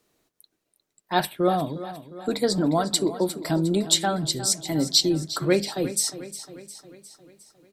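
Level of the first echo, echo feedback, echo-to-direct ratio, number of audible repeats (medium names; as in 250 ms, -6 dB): -14.0 dB, 56%, -12.5 dB, 5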